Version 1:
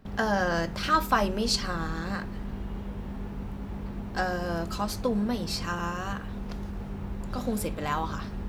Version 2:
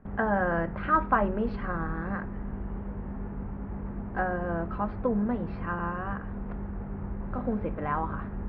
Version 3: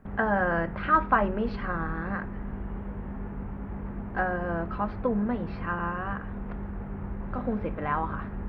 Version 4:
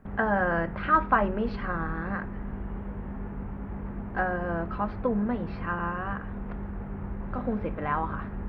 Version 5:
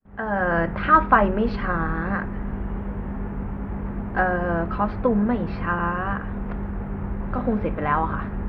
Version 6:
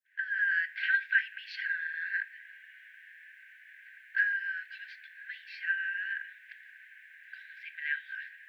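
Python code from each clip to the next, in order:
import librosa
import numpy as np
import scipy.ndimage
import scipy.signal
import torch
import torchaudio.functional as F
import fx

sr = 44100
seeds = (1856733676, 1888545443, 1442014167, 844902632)

y1 = scipy.signal.sosfilt(scipy.signal.cheby2(4, 70, 7600.0, 'lowpass', fs=sr, output='sos'), x)
y2 = fx.high_shelf(y1, sr, hz=2300.0, db=9.0)
y3 = y2
y4 = fx.fade_in_head(y3, sr, length_s=0.64)
y4 = y4 * 10.0 ** (6.5 / 20.0)
y5 = fx.brickwall_highpass(y4, sr, low_hz=1500.0)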